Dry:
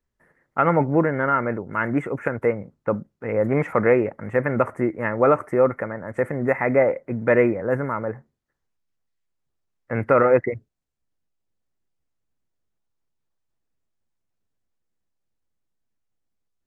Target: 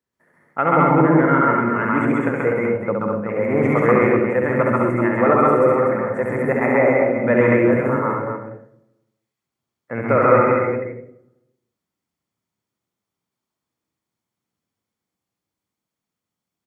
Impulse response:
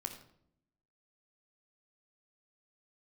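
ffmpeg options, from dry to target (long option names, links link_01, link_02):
-filter_complex "[0:a]highpass=140,aecho=1:1:68|248:0.668|0.447,asplit=2[link_01][link_02];[1:a]atrim=start_sample=2205,adelay=132[link_03];[link_02][link_03]afir=irnorm=-1:irlink=0,volume=4dB[link_04];[link_01][link_04]amix=inputs=2:normalize=0,volume=-1dB"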